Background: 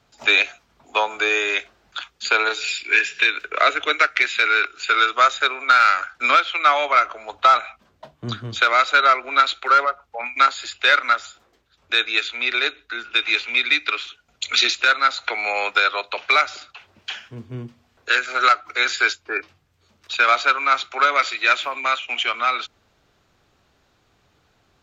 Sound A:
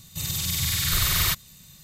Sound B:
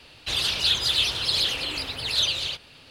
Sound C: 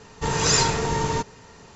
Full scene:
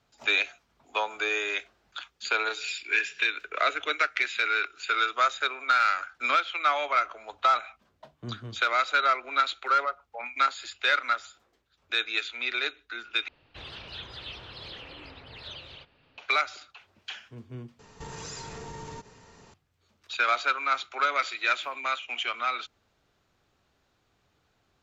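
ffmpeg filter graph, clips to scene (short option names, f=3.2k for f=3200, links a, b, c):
-filter_complex "[0:a]volume=-8.5dB[a];[2:a]lowpass=2.1k[b];[3:a]acompressor=threshold=-31dB:ratio=6:attack=3.2:release=140:knee=1:detection=peak[c];[a]asplit=3[d][e][f];[d]atrim=end=13.284[g];[b]atrim=end=2.9,asetpts=PTS-STARTPTS,volume=-10dB[h];[e]atrim=start=16.176:end=17.794[i];[c]atrim=end=1.75,asetpts=PTS-STARTPTS,volume=-6.5dB[j];[f]atrim=start=19.536[k];[g][h]acrossfade=d=0.004:c1=hsin:c2=hsin[l];[l][i]acrossfade=d=0.004:c1=hsin:c2=hsin[m];[m][j]acrossfade=d=0.004:c1=hsin:c2=hsin[n];[n][k]acrossfade=d=0.004:c1=hsin:c2=hsin"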